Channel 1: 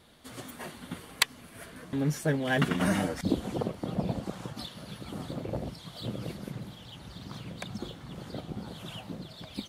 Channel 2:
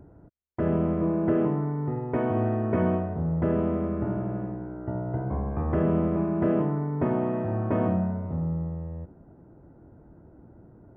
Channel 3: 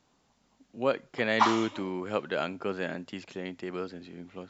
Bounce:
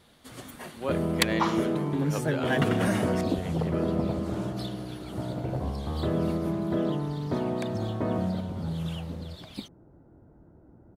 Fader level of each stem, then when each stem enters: -0.5 dB, -3.5 dB, -4.5 dB; 0.00 s, 0.30 s, 0.00 s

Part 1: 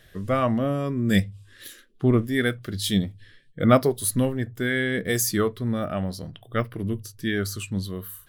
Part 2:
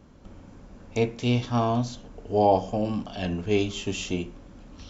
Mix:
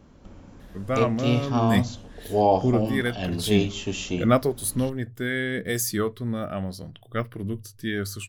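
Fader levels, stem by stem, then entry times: -2.5 dB, +0.5 dB; 0.60 s, 0.00 s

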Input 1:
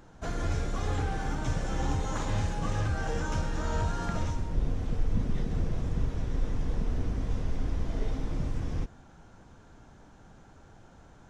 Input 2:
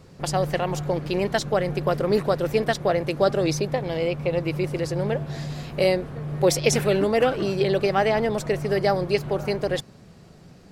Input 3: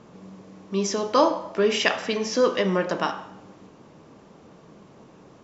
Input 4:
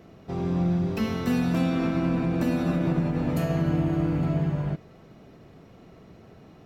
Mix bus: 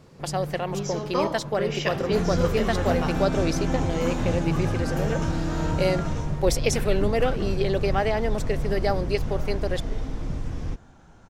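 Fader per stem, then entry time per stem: +1.5 dB, -3.5 dB, -7.5 dB, -4.5 dB; 1.90 s, 0.00 s, 0.00 s, 1.60 s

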